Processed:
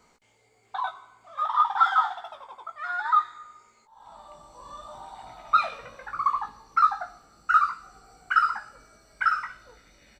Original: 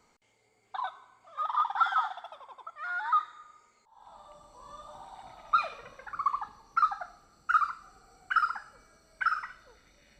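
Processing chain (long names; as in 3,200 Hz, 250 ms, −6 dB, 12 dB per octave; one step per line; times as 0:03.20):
double-tracking delay 18 ms −6 dB
level +4 dB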